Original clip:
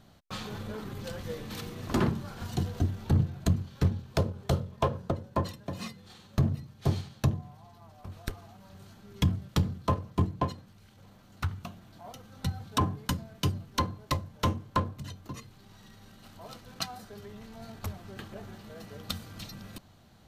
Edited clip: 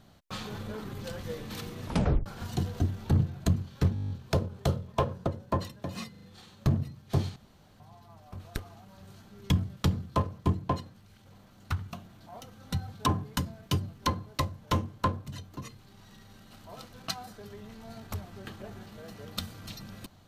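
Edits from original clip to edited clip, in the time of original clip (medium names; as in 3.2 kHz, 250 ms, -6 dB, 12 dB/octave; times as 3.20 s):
1.85 s: tape stop 0.41 s
3.94 s: stutter 0.02 s, 9 plays
5.95 s: stutter 0.04 s, 4 plays
7.08–7.52 s: room tone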